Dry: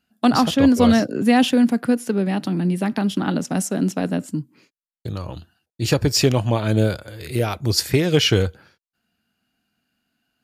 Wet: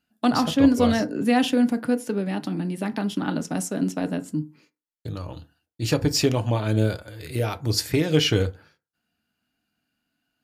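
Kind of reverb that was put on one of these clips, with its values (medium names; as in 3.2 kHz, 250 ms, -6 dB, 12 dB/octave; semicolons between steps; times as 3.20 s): FDN reverb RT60 0.31 s, low-frequency decay 1×, high-frequency decay 0.5×, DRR 9.5 dB; trim -4.5 dB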